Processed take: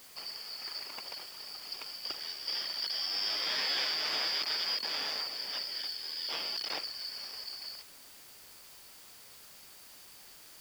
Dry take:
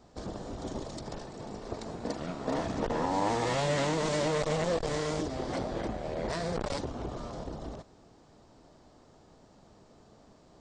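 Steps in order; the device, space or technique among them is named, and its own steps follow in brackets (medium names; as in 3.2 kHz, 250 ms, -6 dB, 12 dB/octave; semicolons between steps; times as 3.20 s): split-band scrambled radio (four frequency bands reordered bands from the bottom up 4321; band-pass 370–2800 Hz; white noise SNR 16 dB); trim +5.5 dB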